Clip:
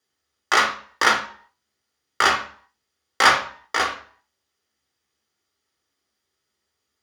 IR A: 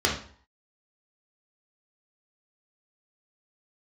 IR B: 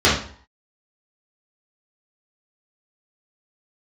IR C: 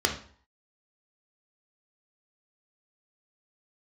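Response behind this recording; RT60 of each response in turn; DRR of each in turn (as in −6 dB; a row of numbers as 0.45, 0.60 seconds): C; 0.50, 0.50, 0.50 seconds; −3.5, −10.0, 1.5 decibels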